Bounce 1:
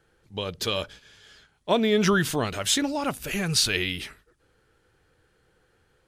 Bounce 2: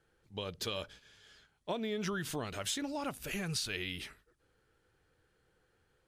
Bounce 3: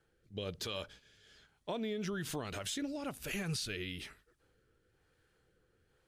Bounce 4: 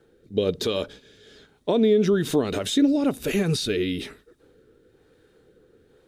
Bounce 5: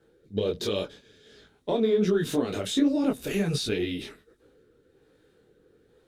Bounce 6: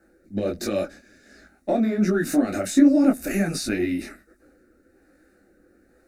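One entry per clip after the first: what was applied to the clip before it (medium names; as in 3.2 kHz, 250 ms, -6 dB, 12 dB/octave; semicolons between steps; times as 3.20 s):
compression 6:1, threshold -25 dBFS, peak gain reduction 8.5 dB; trim -8 dB
rotary cabinet horn 1.1 Hz; peak limiter -30.5 dBFS, peak gain reduction 7 dB; trim +2 dB
small resonant body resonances 270/410/3700 Hz, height 12 dB, ringing for 20 ms; trim +8 dB
Chebyshev shaper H 6 -36 dB, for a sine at -9.5 dBFS; detune thickener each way 47 cents
static phaser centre 660 Hz, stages 8; trim +8 dB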